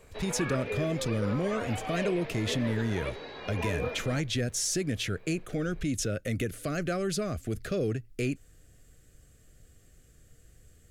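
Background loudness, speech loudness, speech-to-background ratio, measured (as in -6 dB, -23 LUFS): -37.0 LUFS, -31.5 LUFS, 5.5 dB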